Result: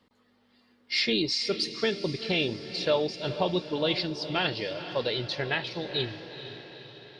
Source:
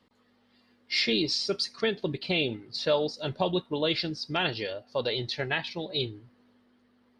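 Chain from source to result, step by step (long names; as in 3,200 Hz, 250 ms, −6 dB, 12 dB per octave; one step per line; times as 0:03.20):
feedback delay with all-pass diffusion 463 ms, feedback 58%, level −11.5 dB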